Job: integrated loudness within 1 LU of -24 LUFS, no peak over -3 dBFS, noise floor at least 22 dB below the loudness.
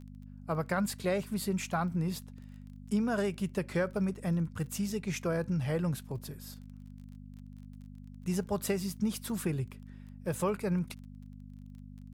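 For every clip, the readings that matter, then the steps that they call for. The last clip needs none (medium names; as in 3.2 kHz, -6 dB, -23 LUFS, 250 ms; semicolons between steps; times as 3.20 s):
tick rate 25 per s; hum 50 Hz; highest harmonic 250 Hz; hum level -46 dBFS; loudness -33.5 LUFS; peak level -18.0 dBFS; loudness target -24.0 LUFS
-> de-click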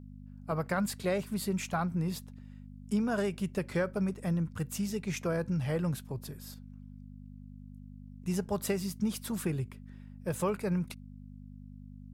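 tick rate 0 per s; hum 50 Hz; highest harmonic 250 Hz; hum level -46 dBFS
-> de-hum 50 Hz, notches 5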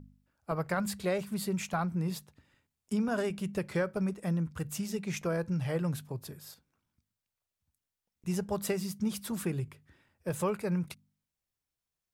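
hum not found; loudness -34.0 LUFS; peak level -18.5 dBFS; loudness target -24.0 LUFS
-> trim +10 dB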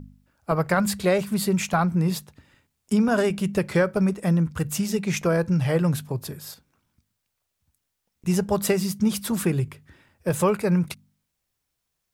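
loudness -24.0 LUFS; peak level -8.5 dBFS; noise floor -79 dBFS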